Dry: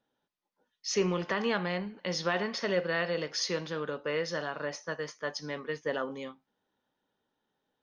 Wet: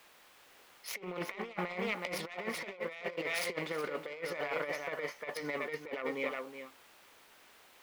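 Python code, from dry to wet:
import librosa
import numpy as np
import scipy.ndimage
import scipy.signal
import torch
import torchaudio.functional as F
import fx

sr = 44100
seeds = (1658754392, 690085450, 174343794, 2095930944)

p1 = fx.self_delay(x, sr, depth_ms=0.28)
p2 = fx.peak_eq(p1, sr, hz=2200.0, db=10.0, octaves=0.32)
p3 = fx.notch(p2, sr, hz=1600.0, q=8.8)
p4 = fx.dmg_noise_colour(p3, sr, seeds[0], colour='white', level_db=-57.0)
p5 = fx.bass_treble(p4, sr, bass_db=-11, treble_db=-14)
p6 = p5 + fx.echo_single(p5, sr, ms=371, db=-10.0, dry=0)
y = fx.over_compress(p6, sr, threshold_db=-37.0, ratio=-0.5)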